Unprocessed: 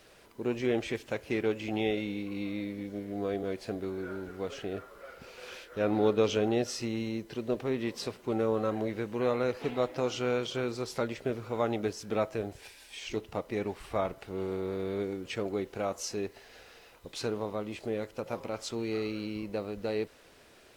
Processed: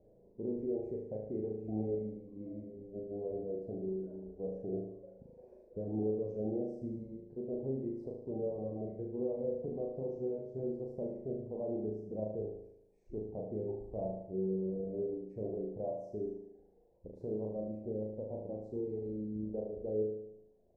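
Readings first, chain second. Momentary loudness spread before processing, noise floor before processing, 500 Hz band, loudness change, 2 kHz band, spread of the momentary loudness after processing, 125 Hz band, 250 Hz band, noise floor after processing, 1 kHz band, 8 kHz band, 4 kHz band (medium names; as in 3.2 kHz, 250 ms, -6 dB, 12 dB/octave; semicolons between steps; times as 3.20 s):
10 LU, -57 dBFS, -5.5 dB, -6.0 dB, under -40 dB, 10 LU, -4.5 dB, -5.5 dB, -64 dBFS, -15.5 dB, under -35 dB, under -40 dB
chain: inverse Chebyshev low-pass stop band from 1.2 kHz, stop band 40 dB; reverb removal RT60 1.7 s; peaking EQ 300 Hz -3 dB 0.36 oct; peak limiter -29 dBFS, peak gain reduction 10.5 dB; feedback comb 190 Hz, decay 1.2 s; flutter echo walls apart 6.4 m, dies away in 0.83 s; trim +5 dB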